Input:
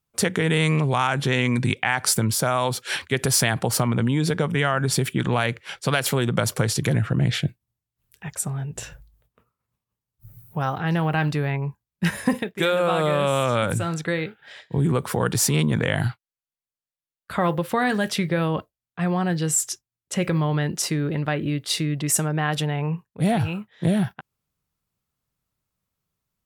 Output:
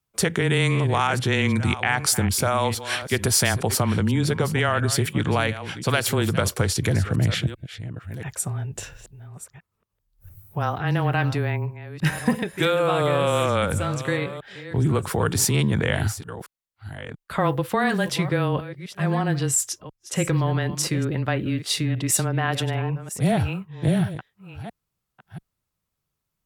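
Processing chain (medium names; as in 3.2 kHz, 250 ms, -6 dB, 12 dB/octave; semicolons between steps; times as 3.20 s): chunks repeated in reverse 686 ms, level -13 dB; frequency shift -17 Hz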